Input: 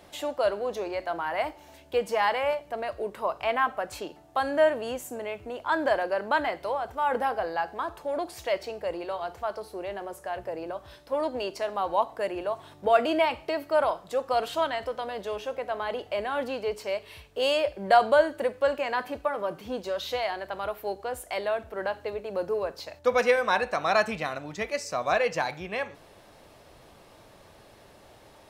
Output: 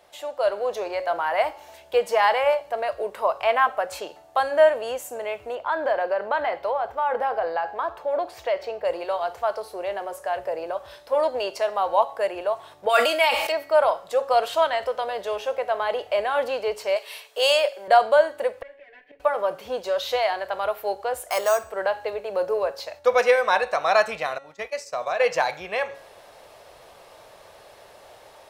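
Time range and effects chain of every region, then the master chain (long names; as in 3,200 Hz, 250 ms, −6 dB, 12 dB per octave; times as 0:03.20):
0:05.55–0:08.85: parametric band 10,000 Hz −12.5 dB 1.9 octaves + downward compressor 2.5 to 1, threshold −27 dBFS
0:12.89–0:13.52: spectral tilt +3.5 dB per octave + comb filter 3.6 ms, depth 45% + level that may fall only so fast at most 44 dB per second
0:16.96–0:17.88: high-pass filter 420 Hz + high-shelf EQ 2,900 Hz +8.5 dB
0:18.62–0:19.20: lower of the sound and its delayed copy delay 6.9 ms + drawn EQ curve 130 Hz 0 dB, 390 Hz +8 dB, 1,200 Hz −15 dB, 1,800 Hz +12 dB, 9,300 Hz −28 dB + gate with flip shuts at −24 dBFS, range −25 dB
0:21.29–0:21.70: parametric band 1,200 Hz +8.5 dB 0.39 octaves + bad sample-rate conversion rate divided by 6×, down none, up hold
0:24.38–0:25.20: downward expander −32 dBFS + downward compressor 3 to 1, threshold −30 dBFS
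whole clip: low shelf with overshoot 380 Hz −9.5 dB, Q 1.5; hum removal 275.8 Hz, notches 33; automatic gain control gain up to 8.5 dB; level −3.5 dB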